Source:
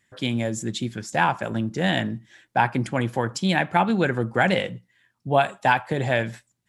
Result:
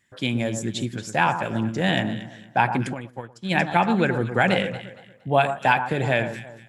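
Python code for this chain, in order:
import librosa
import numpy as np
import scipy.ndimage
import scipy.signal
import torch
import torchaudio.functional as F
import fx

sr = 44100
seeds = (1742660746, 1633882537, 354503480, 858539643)

p1 = x + fx.echo_alternate(x, sr, ms=116, hz=1500.0, feedback_pct=53, wet_db=-8.5, dry=0)
p2 = fx.dynamic_eq(p1, sr, hz=2500.0, q=6.9, threshold_db=-45.0, ratio=4.0, max_db=5)
y = fx.upward_expand(p2, sr, threshold_db=-30.0, expansion=2.5, at=(2.93, 3.5), fade=0.02)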